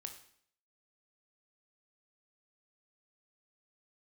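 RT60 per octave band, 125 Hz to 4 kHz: 0.60, 0.65, 0.65, 0.60, 0.60, 0.60 seconds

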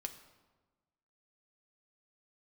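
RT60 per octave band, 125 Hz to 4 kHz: 1.5, 1.5, 1.3, 1.3, 0.95, 0.85 seconds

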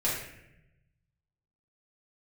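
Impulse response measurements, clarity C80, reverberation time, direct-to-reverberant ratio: 5.0 dB, 0.85 s, −8.0 dB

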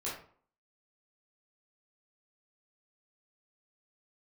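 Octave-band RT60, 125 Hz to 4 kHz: 0.45, 0.50, 0.50, 0.50, 0.40, 0.30 seconds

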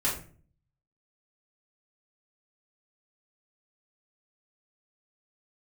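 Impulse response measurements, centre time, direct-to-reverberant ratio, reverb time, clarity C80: 30 ms, −7.5 dB, 0.45 s, 11.0 dB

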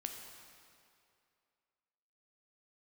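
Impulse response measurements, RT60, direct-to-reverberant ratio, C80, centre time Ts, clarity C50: 2.5 s, 3.0 dB, 5.5 dB, 61 ms, 4.5 dB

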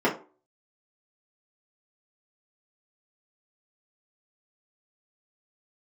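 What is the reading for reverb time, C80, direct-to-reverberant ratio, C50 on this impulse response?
0.40 s, 16.5 dB, −7.5 dB, 11.0 dB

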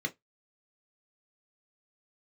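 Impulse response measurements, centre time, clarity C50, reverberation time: 5 ms, 24.0 dB, 0.15 s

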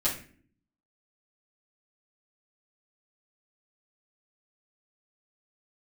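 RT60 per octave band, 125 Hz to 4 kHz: 0.80, 0.85, 0.55, 0.35, 0.45, 0.35 seconds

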